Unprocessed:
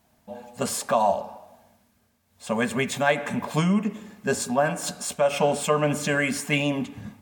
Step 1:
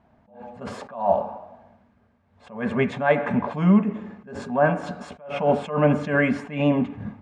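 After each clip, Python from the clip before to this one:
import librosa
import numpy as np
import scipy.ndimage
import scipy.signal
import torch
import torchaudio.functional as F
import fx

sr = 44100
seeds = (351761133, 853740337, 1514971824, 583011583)

y = scipy.signal.sosfilt(scipy.signal.butter(2, 1600.0, 'lowpass', fs=sr, output='sos'), x)
y = fx.attack_slew(y, sr, db_per_s=130.0)
y = F.gain(torch.from_numpy(y), 6.0).numpy()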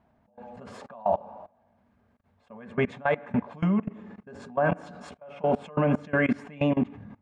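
y = fx.level_steps(x, sr, step_db=22)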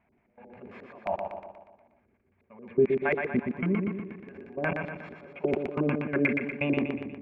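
y = fx.filter_lfo_lowpass(x, sr, shape='square', hz=5.6, low_hz=370.0, high_hz=2300.0, q=7.0)
y = fx.echo_feedback(y, sr, ms=120, feedback_pct=52, wet_db=-5.0)
y = F.gain(torch.from_numpy(y), -6.5).numpy()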